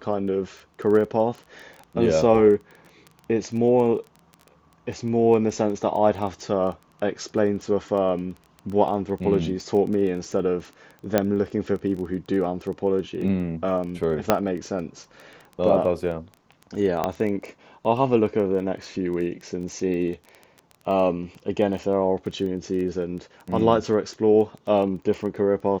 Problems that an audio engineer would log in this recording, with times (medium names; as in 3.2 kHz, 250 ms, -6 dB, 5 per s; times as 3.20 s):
crackle 15 per s -31 dBFS
11.18 s: pop -6 dBFS
14.30 s: pop -3 dBFS
17.04 s: pop -10 dBFS